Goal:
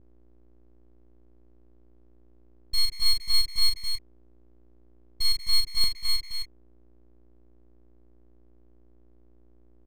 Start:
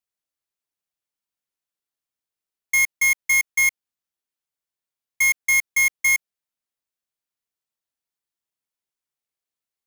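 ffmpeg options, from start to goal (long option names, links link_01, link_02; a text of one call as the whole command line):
ffmpeg -i in.wav -af "highpass=frequency=190:poles=1,aemphasis=mode=reproduction:type=bsi,aecho=1:1:6.1:0.64,aecho=1:1:41|186|262|288:0.708|0.168|0.631|0.2,aeval=exprs='val(0)+0.00316*(sin(2*PI*60*n/s)+sin(2*PI*2*60*n/s)/2+sin(2*PI*3*60*n/s)/3+sin(2*PI*4*60*n/s)/4+sin(2*PI*5*60*n/s)/5)':channel_layout=same,asetnsamples=nb_out_samples=441:pad=0,asendcmd='5.84 lowpass f 1400',lowpass=frequency=2700:poles=1,aeval=exprs='abs(val(0))':channel_layout=same,volume=-3.5dB" out.wav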